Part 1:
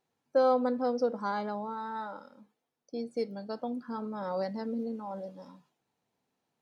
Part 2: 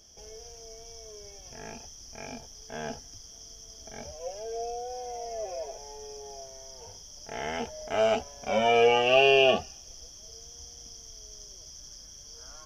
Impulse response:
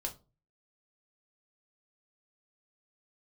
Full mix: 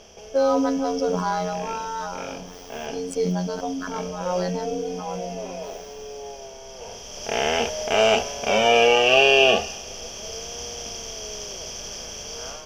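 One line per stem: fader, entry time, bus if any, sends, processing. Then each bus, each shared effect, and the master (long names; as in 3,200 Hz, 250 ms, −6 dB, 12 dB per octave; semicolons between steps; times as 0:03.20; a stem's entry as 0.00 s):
+3.0 dB, 0.00 s, no send, phases set to zero 90 Hz; level that may fall only so fast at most 25 dB per second
−5.0 dB, 0.00 s, send −10 dB, compressor on every frequency bin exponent 0.6; high-shelf EQ 2,800 Hz +8 dB; automatic ducking −12 dB, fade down 0.65 s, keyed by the first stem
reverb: on, pre-delay 4 ms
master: automatic gain control gain up to 6 dB; one half of a high-frequency compander decoder only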